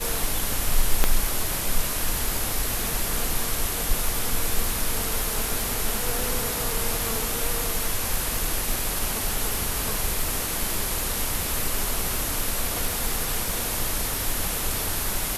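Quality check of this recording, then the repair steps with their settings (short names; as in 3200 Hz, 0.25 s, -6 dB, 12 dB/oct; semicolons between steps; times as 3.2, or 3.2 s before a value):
crackle 43/s -28 dBFS
1.04 pop -3 dBFS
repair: de-click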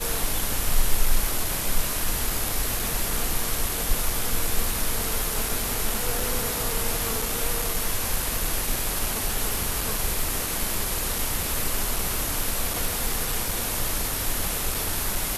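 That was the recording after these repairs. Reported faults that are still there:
1.04 pop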